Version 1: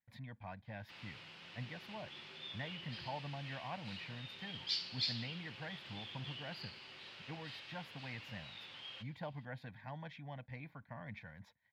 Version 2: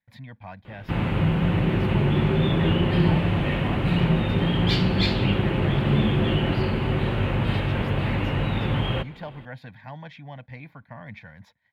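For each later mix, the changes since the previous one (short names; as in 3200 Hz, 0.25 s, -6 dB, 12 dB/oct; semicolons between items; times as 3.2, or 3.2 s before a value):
speech +8.0 dB; background: remove band-pass 5100 Hz, Q 4.7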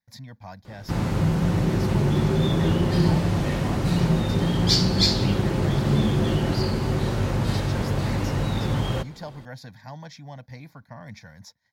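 master: add resonant high shelf 4000 Hz +12.5 dB, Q 3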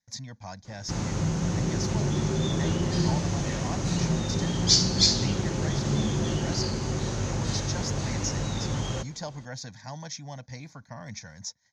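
background -5.5 dB; master: add synth low-pass 6400 Hz, resonance Q 6.8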